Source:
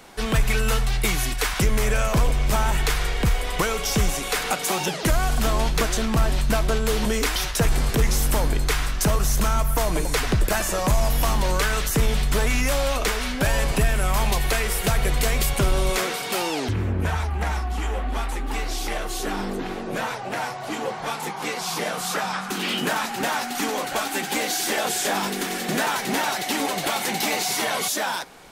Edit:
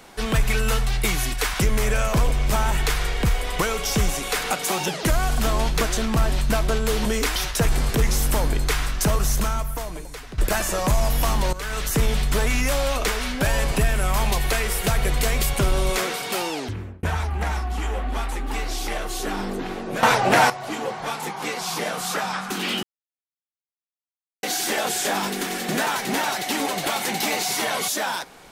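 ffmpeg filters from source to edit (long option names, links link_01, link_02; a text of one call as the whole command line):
ffmpeg -i in.wav -filter_complex "[0:a]asplit=8[link_01][link_02][link_03][link_04][link_05][link_06][link_07][link_08];[link_01]atrim=end=10.38,asetpts=PTS-STARTPTS,afade=type=out:start_time=9.32:duration=1.06:curve=qua:silence=0.158489[link_09];[link_02]atrim=start=10.38:end=11.53,asetpts=PTS-STARTPTS,afade=type=in:duration=0.004:curve=hsin:silence=0.158489,afade=type=out:start_time=1.146:duration=0.004:curve=hsin:silence=0.158489[link_10];[link_03]atrim=start=11.53:end=17.03,asetpts=PTS-STARTPTS,afade=type=in:duration=0.39:silence=0.158489,afade=type=out:start_time=4.64:duration=0.86:curve=qsin[link_11];[link_04]atrim=start=17.03:end=20.032,asetpts=PTS-STARTPTS,afade=type=in:duration=0.004:curve=hsin[link_12];[link_05]atrim=start=20.028:end=20.502,asetpts=PTS-STARTPTS,volume=12dB[link_13];[link_06]atrim=start=20.498:end=22.83,asetpts=PTS-STARTPTS,afade=type=out:start_time=2.328:duration=0.004:curve=hsin[link_14];[link_07]atrim=start=22.83:end=24.43,asetpts=PTS-STARTPTS,volume=0[link_15];[link_08]atrim=start=24.43,asetpts=PTS-STARTPTS,afade=type=in:duration=0.004:curve=hsin[link_16];[link_09][link_10][link_11][link_12]concat=n=4:v=0:a=1[link_17];[link_17][link_13]acrossfade=duration=0.004:curve1=hsin:curve2=hsin[link_18];[link_14][link_15][link_16]concat=n=3:v=0:a=1[link_19];[link_18][link_19]acrossfade=duration=0.004:curve1=hsin:curve2=hsin" out.wav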